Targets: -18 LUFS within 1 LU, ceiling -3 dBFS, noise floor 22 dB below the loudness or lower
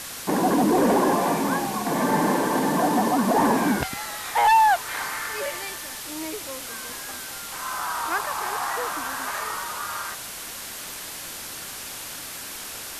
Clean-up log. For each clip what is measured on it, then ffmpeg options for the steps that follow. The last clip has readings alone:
noise floor -36 dBFS; noise floor target -47 dBFS; loudness -25.0 LUFS; peak level -10.5 dBFS; loudness target -18.0 LUFS
-> -af "afftdn=nr=11:nf=-36"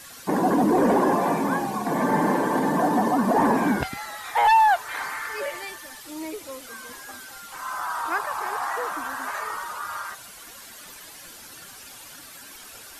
noise floor -44 dBFS; noise floor target -46 dBFS
-> -af "afftdn=nr=6:nf=-44"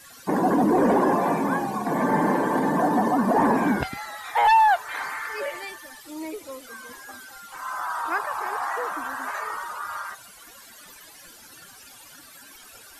noise floor -48 dBFS; loudness -23.5 LUFS; peak level -11.5 dBFS; loudness target -18.0 LUFS
-> -af "volume=1.88"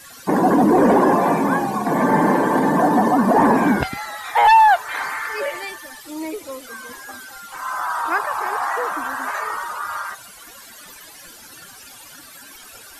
loudness -18.0 LUFS; peak level -6.0 dBFS; noise floor -42 dBFS

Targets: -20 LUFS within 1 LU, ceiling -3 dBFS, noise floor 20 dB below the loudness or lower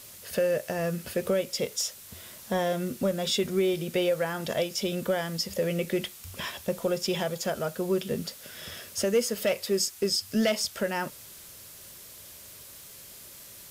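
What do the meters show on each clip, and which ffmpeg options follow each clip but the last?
noise floor -48 dBFS; noise floor target -49 dBFS; loudness -29.0 LUFS; peak level -15.0 dBFS; loudness target -20.0 LUFS
-> -af "afftdn=nr=6:nf=-48"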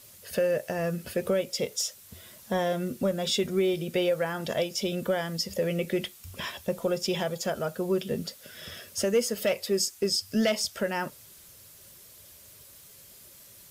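noise floor -52 dBFS; loudness -29.0 LUFS; peak level -15.0 dBFS; loudness target -20.0 LUFS
-> -af "volume=2.82"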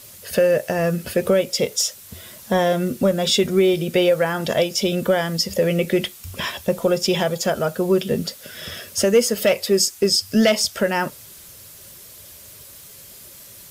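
loudness -20.0 LUFS; peak level -6.0 dBFS; noise floor -43 dBFS

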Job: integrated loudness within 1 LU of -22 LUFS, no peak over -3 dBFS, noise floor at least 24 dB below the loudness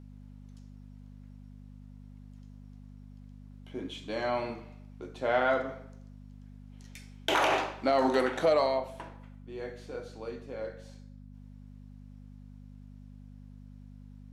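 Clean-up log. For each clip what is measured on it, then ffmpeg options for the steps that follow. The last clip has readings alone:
hum 50 Hz; highest harmonic 250 Hz; hum level -46 dBFS; loudness -30.5 LUFS; peak level -15.0 dBFS; loudness target -22.0 LUFS
-> -af "bandreject=f=50:t=h:w=4,bandreject=f=100:t=h:w=4,bandreject=f=150:t=h:w=4,bandreject=f=200:t=h:w=4,bandreject=f=250:t=h:w=4"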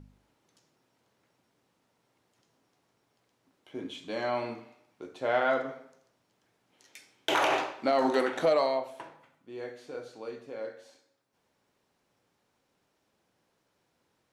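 hum not found; loudness -30.0 LUFS; peak level -15.0 dBFS; loudness target -22.0 LUFS
-> -af "volume=2.51"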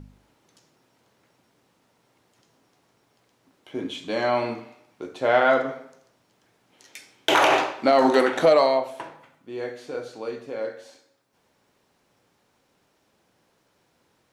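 loudness -22.5 LUFS; peak level -7.0 dBFS; noise floor -68 dBFS

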